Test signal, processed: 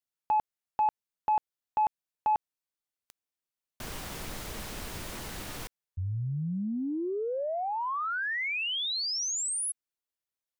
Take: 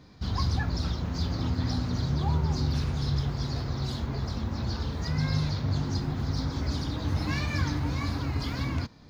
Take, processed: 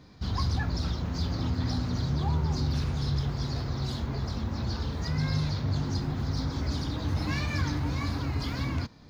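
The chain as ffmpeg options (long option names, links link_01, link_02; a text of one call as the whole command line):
ffmpeg -i in.wav -af "asoftclip=type=tanh:threshold=-17dB" out.wav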